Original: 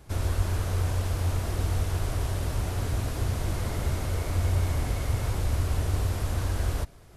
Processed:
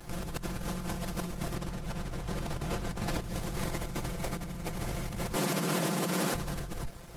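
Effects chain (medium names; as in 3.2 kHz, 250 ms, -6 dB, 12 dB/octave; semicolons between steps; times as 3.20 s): comb filter that takes the minimum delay 5.8 ms; 1.55–3.22 s: treble shelf 7.7 kHz -8 dB; 5.36–6.34 s: steep high-pass 170 Hz 48 dB/octave; compressor with a negative ratio -37 dBFS, ratio -1; crossover distortion -59 dBFS; trim +3 dB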